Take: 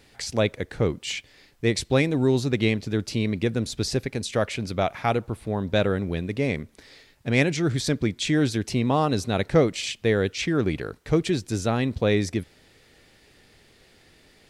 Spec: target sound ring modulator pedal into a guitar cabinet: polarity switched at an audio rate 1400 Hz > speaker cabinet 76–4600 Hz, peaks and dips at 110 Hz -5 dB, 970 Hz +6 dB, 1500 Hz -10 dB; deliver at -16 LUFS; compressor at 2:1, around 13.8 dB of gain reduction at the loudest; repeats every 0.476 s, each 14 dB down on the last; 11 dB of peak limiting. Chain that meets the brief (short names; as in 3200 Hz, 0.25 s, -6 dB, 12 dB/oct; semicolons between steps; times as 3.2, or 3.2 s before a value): compressor 2:1, threshold -41 dBFS; limiter -31.5 dBFS; feedback echo 0.476 s, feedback 20%, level -14 dB; polarity switched at an audio rate 1400 Hz; speaker cabinet 76–4600 Hz, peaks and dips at 110 Hz -5 dB, 970 Hz +6 dB, 1500 Hz -10 dB; gain +25.5 dB